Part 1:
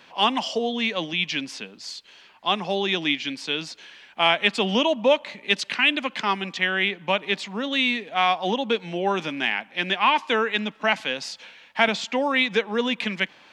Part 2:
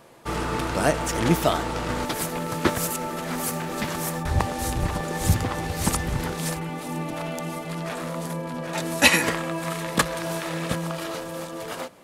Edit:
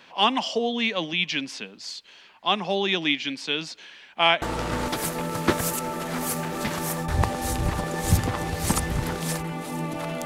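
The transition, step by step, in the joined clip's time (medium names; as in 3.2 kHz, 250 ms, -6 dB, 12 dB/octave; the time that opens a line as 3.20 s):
part 1
4.42 s: go over to part 2 from 1.59 s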